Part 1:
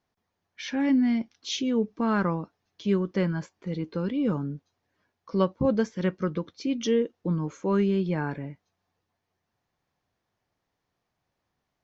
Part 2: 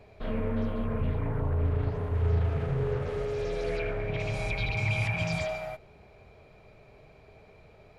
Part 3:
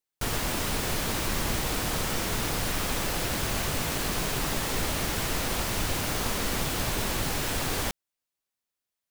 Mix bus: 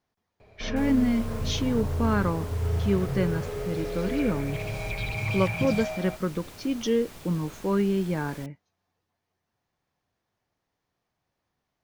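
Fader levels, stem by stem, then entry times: −0.5, −1.0, −17.5 decibels; 0.00, 0.40, 0.55 seconds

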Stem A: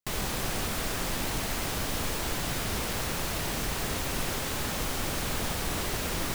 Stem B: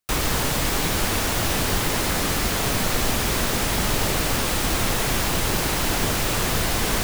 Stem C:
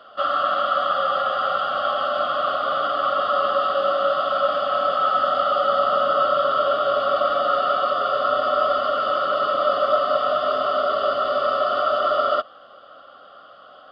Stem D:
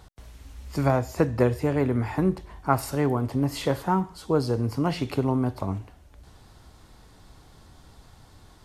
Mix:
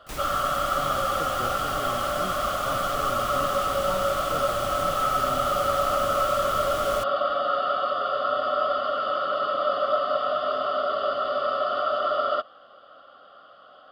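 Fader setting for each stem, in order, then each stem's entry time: −19.0, −13.0, −4.5, −16.5 decibels; 0.00, 0.00, 0.00, 0.00 seconds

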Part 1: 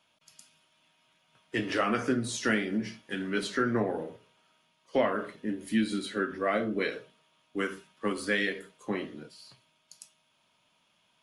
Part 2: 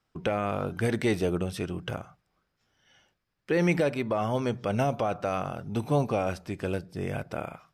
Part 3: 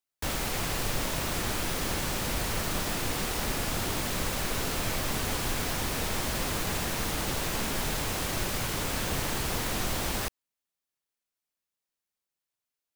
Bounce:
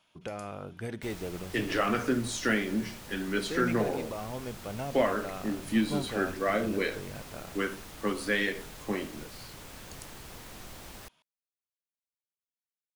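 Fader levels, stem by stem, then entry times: 0.0, −10.5, −15.5 decibels; 0.00, 0.00, 0.80 seconds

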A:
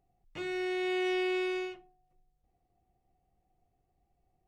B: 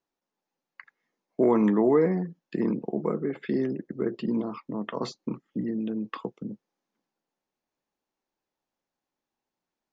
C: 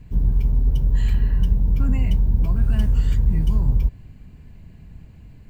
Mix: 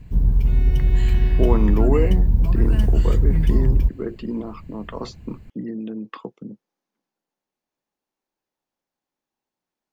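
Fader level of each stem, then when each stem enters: −6.5, 0.0, +1.5 decibels; 0.10, 0.00, 0.00 seconds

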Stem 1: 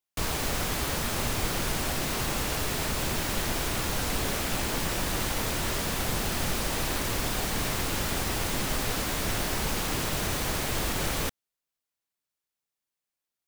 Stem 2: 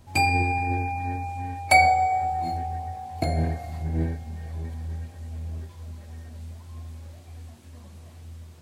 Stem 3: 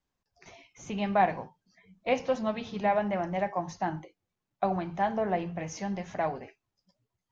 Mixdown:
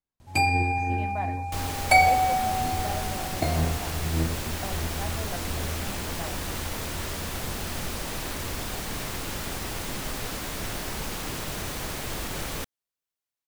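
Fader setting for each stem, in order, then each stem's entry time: −3.5, −1.0, −10.5 decibels; 1.35, 0.20, 0.00 seconds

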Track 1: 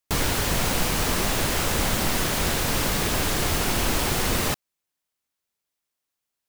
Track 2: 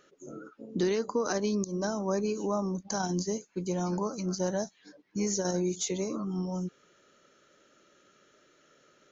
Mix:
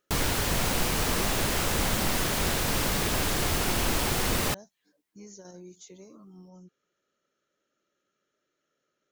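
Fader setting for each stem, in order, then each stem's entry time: −3.0, −17.0 decibels; 0.00, 0.00 seconds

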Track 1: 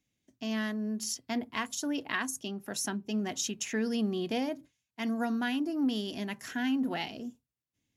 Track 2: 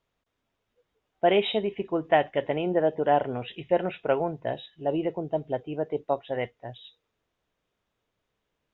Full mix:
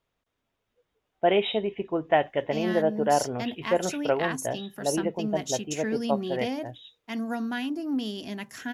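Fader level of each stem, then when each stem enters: +0.5, −0.5 decibels; 2.10, 0.00 seconds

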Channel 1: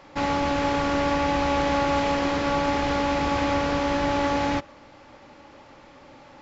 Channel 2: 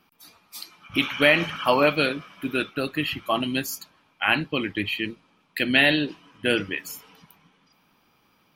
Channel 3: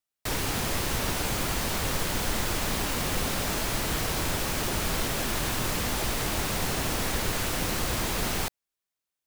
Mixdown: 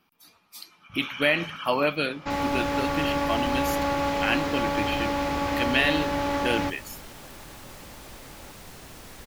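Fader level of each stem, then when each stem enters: −3.0, −4.5, −16.0 decibels; 2.10, 0.00, 2.05 seconds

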